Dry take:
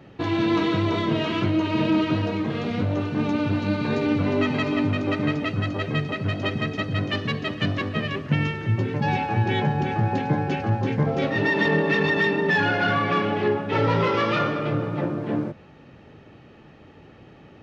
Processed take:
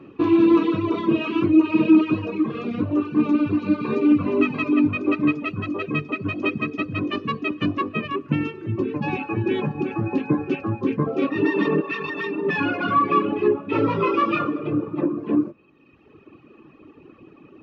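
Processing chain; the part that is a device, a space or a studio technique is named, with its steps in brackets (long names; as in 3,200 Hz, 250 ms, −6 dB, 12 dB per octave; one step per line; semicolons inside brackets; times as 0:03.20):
inside a helmet (high-shelf EQ 5,100 Hz −5 dB; hollow resonant body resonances 320/1,100/2,500 Hz, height 17 dB, ringing for 20 ms)
reverb reduction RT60 1.6 s
0:11.80–0:12.44: parametric band 250 Hz −14 dB → −5.5 dB 2.5 octaves
level −7 dB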